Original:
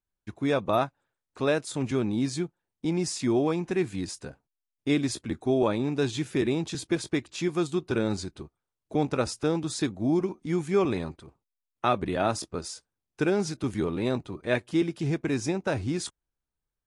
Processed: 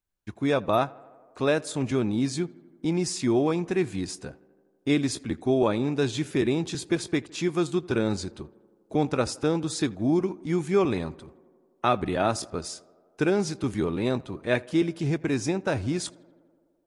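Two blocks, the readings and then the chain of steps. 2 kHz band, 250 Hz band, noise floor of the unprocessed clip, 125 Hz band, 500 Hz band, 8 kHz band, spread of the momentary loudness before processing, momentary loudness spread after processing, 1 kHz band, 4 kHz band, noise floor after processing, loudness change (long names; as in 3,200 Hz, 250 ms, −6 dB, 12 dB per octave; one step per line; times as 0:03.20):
+1.5 dB, +1.5 dB, below −85 dBFS, +1.5 dB, +1.5 dB, +1.5 dB, 9 LU, 10 LU, +1.5 dB, +1.5 dB, −66 dBFS, +1.5 dB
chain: tape delay 82 ms, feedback 82%, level −22 dB, low-pass 2,200 Hz
level +1.5 dB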